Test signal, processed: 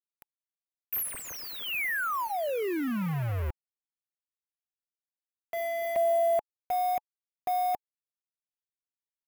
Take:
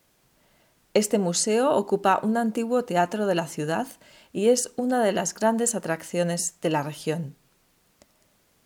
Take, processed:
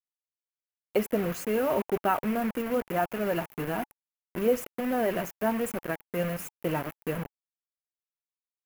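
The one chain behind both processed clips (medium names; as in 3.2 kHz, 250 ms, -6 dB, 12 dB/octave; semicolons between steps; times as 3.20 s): coarse spectral quantiser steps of 15 dB; bit crusher 5-bit; high-order bell 5.6 kHz -14 dB; band-stop 860 Hz, Q 12; trim -4.5 dB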